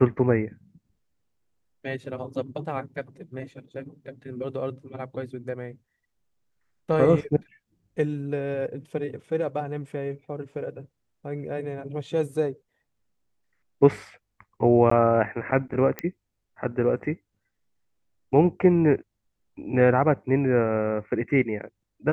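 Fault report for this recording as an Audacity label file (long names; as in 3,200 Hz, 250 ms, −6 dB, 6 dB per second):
14.900000	14.910000	drop-out 14 ms
15.990000	15.990000	click −14 dBFS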